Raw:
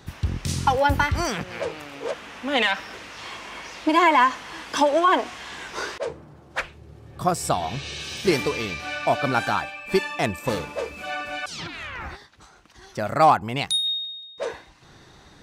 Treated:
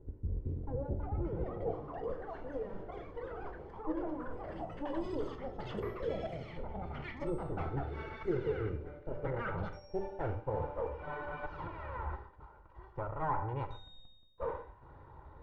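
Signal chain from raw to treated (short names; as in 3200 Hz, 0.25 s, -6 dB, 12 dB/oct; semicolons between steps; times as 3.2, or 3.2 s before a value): minimum comb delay 2.1 ms; LPF 4700 Hz; low shelf 130 Hz +10.5 dB; de-hum 97.82 Hz, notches 26; reverse; compressor 6:1, threshold -28 dBFS, peak gain reduction 14.5 dB; reverse; non-linear reverb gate 0.16 s flat, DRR 9 dB; low-pass sweep 400 Hz -> 990 Hz, 8.68–11.14; echoes that change speed 0.58 s, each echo +7 st, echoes 3, each echo -6 dB; gain -7 dB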